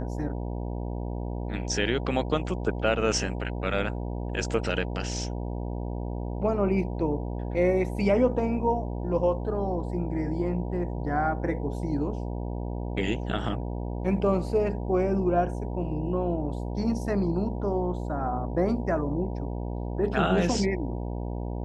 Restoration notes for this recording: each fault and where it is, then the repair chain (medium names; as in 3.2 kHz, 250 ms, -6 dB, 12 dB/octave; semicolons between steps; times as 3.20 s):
buzz 60 Hz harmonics 16 -32 dBFS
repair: de-hum 60 Hz, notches 16